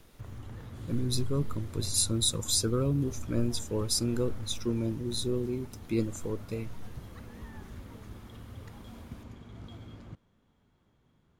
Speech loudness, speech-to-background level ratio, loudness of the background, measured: -31.0 LUFS, 15.0 dB, -46.0 LUFS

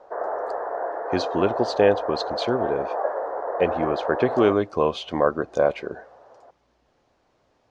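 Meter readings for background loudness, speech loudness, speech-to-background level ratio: -28.5 LUFS, -24.0 LUFS, 4.5 dB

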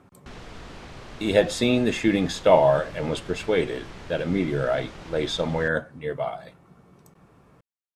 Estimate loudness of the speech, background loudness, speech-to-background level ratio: -24.0 LUFS, -43.0 LUFS, 19.0 dB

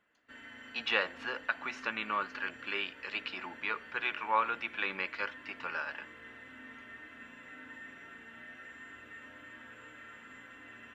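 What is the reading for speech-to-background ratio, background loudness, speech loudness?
14.5 dB, -49.5 LUFS, -35.0 LUFS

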